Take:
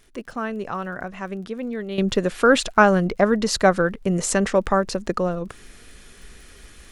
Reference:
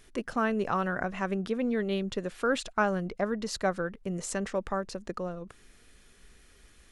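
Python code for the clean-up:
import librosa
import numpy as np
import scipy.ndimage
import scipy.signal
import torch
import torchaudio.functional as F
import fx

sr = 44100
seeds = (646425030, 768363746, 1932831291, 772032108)

y = fx.fix_declick_ar(x, sr, threshold=6.5)
y = fx.gain(y, sr, db=fx.steps((0.0, 0.0), (1.98, -12.0)))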